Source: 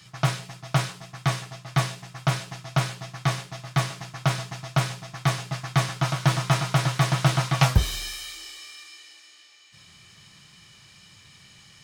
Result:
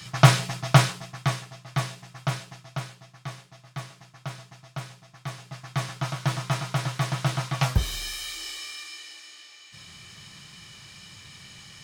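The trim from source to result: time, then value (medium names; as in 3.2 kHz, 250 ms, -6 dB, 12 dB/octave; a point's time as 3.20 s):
0.64 s +8.5 dB
1.46 s -4 dB
2.31 s -4 dB
3.07 s -12.5 dB
5.25 s -12.5 dB
5.89 s -5 dB
7.63 s -5 dB
8.50 s +5 dB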